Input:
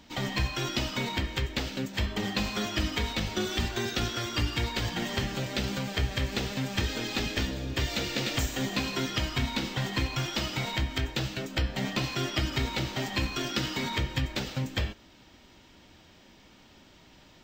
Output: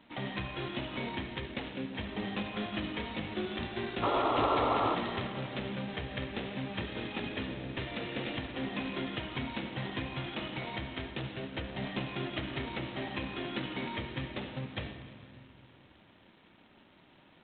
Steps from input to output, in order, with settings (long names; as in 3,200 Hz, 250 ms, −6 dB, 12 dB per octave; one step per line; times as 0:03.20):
dynamic equaliser 1,400 Hz, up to −6 dB, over −51 dBFS, Q 2.7
sound drawn into the spectrogram noise, 0:04.02–0:04.95, 260–1,400 Hz −24 dBFS
in parallel at −10 dB: soft clipping −27 dBFS, distortion −10 dB
on the sum: band-pass filter 120–2,700 Hz
on a send at −9 dB: convolution reverb RT60 2.3 s, pre-delay 67 ms
on the sum: level −6.5 dB
G.726 16 kbit/s 8,000 Hz